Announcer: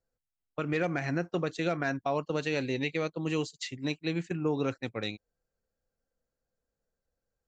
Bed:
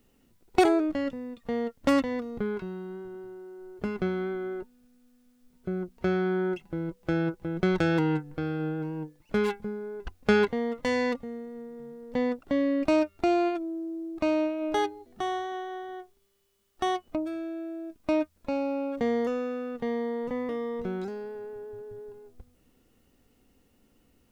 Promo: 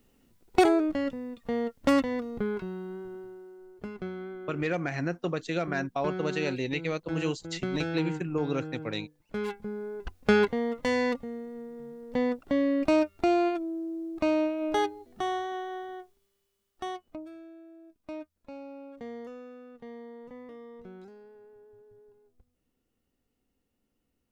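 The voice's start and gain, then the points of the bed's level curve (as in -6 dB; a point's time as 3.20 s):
3.90 s, 0.0 dB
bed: 3.13 s 0 dB
3.89 s -8 dB
9.34 s -8 dB
9.80 s 0 dB
15.79 s 0 dB
17.63 s -14 dB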